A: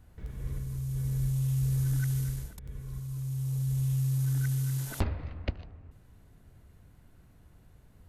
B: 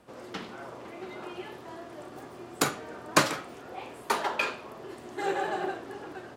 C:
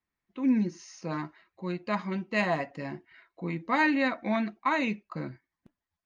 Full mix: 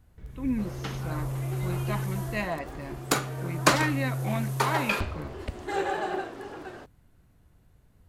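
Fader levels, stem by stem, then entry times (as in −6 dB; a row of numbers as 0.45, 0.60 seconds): −3.0, +1.0, −4.0 decibels; 0.00, 0.50, 0.00 seconds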